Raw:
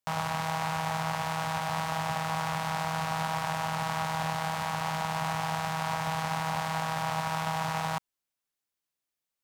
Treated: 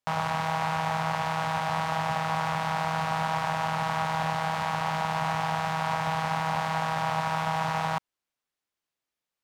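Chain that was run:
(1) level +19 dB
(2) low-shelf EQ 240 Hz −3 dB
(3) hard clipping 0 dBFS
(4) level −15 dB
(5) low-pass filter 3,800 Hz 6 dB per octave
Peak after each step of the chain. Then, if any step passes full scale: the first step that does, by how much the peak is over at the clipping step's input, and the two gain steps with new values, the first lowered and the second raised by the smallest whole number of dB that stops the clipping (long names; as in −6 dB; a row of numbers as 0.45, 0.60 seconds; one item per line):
+4.0, +4.0, 0.0, −15.0, −15.0 dBFS
step 1, 4.0 dB
step 1 +15 dB, step 4 −11 dB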